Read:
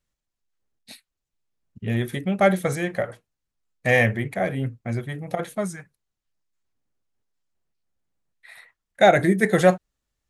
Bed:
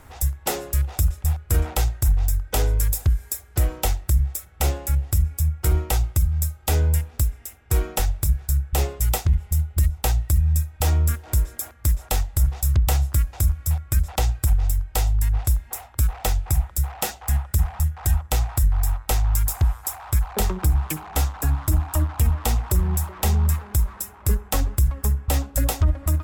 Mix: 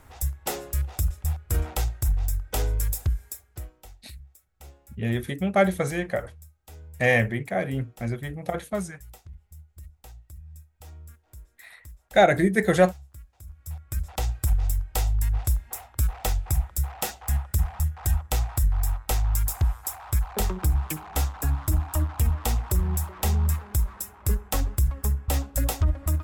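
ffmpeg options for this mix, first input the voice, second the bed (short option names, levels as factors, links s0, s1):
-filter_complex "[0:a]adelay=3150,volume=0.794[s0];[1:a]volume=7.08,afade=t=out:st=3.04:d=0.68:silence=0.0944061,afade=t=in:st=13.45:d=1.08:silence=0.0794328[s1];[s0][s1]amix=inputs=2:normalize=0"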